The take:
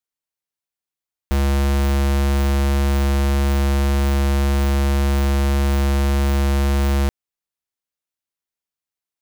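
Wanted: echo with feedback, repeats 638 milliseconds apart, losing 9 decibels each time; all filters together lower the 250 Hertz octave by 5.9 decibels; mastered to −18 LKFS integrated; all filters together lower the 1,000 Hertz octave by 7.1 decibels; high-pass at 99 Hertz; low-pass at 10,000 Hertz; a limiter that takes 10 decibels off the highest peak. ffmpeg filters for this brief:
ffmpeg -i in.wav -af "highpass=99,lowpass=10000,equalizer=frequency=250:width_type=o:gain=-7.5,equalizer=frequency=1000:width_type=o:gain=-9,alimiter=limit=-21.5dB:level=0:latency=1,aecho=1:1:638|1276|1914|2552:0.355|0.124|0.0435|0.0152,volume=18dB" out.wav

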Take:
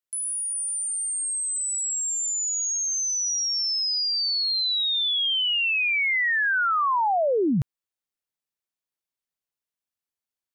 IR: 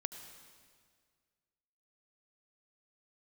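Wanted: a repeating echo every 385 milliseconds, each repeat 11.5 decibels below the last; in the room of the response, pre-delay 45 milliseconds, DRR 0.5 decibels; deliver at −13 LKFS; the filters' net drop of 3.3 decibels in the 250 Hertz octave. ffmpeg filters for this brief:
-filter_complex "[0:a]equalizer=frequency=250:width_type=o:gain=-4.5,aecho=1:1:385|770|1155:0.266|0.0718|0.0194,asplit=2[link_01][link_02];[1:a]atrim=start_sample=2205,adelay=45[link_03];[link_02][link_03]afir=irnorm=-1:irlink=0,volume=0.5dB[link_04];[link_01][link_04]amix=inputs=2:normalize=0,volume=6.5dB"

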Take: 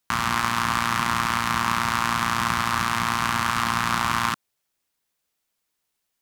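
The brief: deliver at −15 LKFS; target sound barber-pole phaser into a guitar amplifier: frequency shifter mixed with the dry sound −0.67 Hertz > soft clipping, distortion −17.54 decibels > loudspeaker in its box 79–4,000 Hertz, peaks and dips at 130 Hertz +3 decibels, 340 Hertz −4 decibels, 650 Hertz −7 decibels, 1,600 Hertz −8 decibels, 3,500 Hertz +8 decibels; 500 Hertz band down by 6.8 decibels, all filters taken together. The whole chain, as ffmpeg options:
ffmpeg -i in.wav -filter_complex "[0:a]equalizer=frequency=500:width_type=o:gain=-4,asplit=2[link_01][link_02];[link_02]afreqshift=-0.67[link_03];[link_01][link_03]amix=inputs=2:normalize=1,asoftclip=threshold=-15dB,highpass=79,equalizer=frequency=130:width_type=q:width=4:gain=3,equalizer=frequency=340:width_type=q:width=4:gain=-4,equalizer=frequency=650:width_type=q:width=4:gain=-7,equalizer=frequency=1600:width_type=q:width=4:gain=-8,equalizer=frequency=3500:width_type=q:width=4:gain=8,lowpass=frequency=4000:width=0.5412,lowpass=frequency=4000:width=1.3066,volume=14dB" out.wav

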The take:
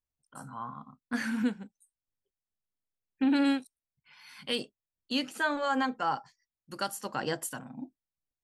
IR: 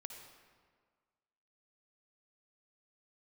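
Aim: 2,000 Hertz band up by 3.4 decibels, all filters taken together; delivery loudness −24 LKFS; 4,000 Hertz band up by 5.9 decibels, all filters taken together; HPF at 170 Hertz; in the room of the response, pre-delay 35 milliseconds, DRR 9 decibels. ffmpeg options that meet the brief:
-filter_complex "[0:a]highpass=170,equalizer=frequency=2000:width_type=o:gain=3.5,equalizer=frequency=4000:width_type=o:gain=6.5,asplit=2[link_01][link_02];[1:a]atrim=start_sample=2205,adelay=35[link_03];[link_02][link_03]afir=irnorm=-1:irlink=0,volume=-5dB[link_04];[link_01][link_04]amix=inputs=2:normalize=0,volume=6dB"

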